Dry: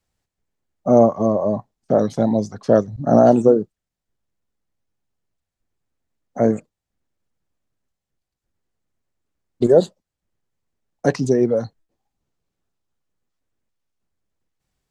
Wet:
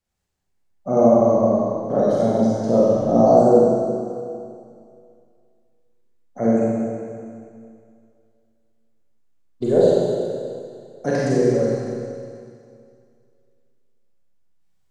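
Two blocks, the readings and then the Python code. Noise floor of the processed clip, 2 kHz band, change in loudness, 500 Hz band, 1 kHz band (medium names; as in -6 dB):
-62 dBFS, -0.5 dB, -1.0 dB, +1.0 dB, +1.0 dB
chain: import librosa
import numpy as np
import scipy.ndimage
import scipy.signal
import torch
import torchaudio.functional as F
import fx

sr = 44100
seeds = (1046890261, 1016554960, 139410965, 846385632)

y = fx.spec_repair(x, sr, seeds[0], start_s=2.68, length_s=0.79, low_hz=1300.0, high_hz=4000.0, source='both')
y = fx.rev_schroeder(y, sr, rt60_s=2.3, comb_ms=31, drr_db=-7.5)
y = y * 10.0 ** (-7.5 / 20.0)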